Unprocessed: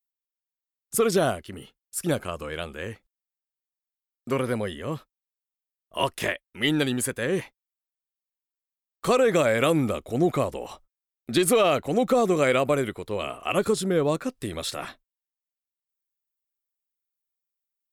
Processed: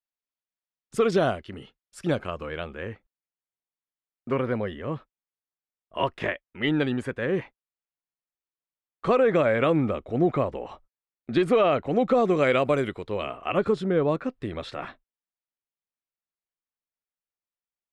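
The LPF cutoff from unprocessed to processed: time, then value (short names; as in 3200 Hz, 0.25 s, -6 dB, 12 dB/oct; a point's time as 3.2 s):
2.05 s 3800 Hz
2.85 s 2300 Hz
11.74 s 2300 Hz
12.88 s 5000 Hz
13.42 s 2400 Hz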